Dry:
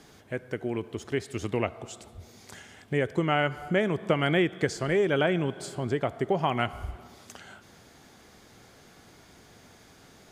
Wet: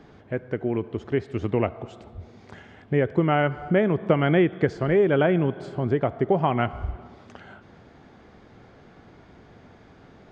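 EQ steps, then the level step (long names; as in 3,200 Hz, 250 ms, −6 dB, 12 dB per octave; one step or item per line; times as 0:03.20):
head-to-tape spacing loss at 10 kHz 34 dB
+6.5 dB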